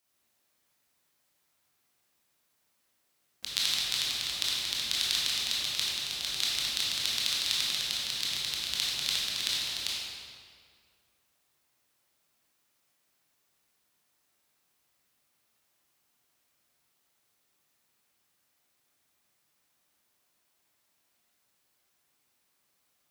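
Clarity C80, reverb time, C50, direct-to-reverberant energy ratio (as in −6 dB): −0.5 dB, 2.1 s, −3.0 dB, −6.5 dB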